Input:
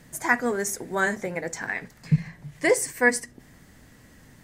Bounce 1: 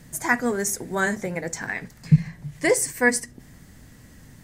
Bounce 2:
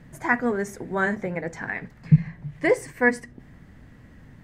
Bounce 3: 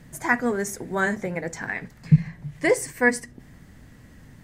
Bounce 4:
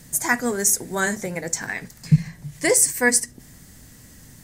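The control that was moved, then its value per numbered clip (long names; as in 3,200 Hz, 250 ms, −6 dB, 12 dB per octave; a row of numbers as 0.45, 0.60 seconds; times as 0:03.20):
bass and treble, treble: +4, −15, −4, +13 decibels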